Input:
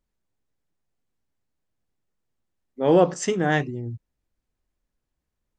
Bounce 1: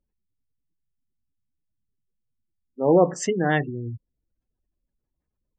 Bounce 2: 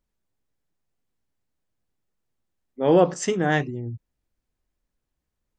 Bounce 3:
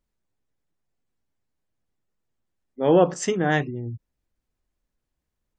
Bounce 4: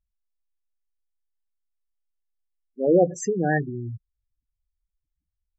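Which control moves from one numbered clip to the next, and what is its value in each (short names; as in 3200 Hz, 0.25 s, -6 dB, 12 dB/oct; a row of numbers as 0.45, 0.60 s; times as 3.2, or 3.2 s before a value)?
spectral gate, under each frame's peak: -25, -60, -45, -10 dB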